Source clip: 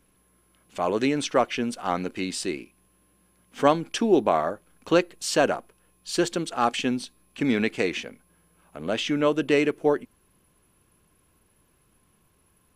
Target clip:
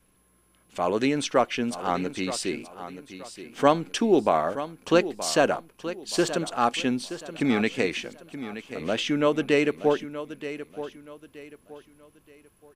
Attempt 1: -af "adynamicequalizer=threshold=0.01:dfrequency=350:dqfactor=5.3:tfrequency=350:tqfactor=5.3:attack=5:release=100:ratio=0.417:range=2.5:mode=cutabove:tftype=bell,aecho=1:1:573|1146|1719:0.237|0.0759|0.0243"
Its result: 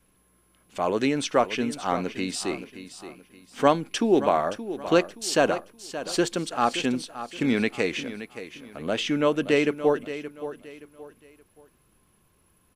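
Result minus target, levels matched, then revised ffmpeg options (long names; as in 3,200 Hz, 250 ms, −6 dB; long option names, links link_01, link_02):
echo 352 ms early
-af "adynamicequalizer=threshold=0.01:dfrequency=350:dqfactor=5.3:tfrequency=350:tqfactor=5.3:attack=5:release=100:ratio=0.417:range=2.5:mode=cutabove:tftype=bell,aecho=1:1:925|1850|2775:0.237|0.0759|0.0243"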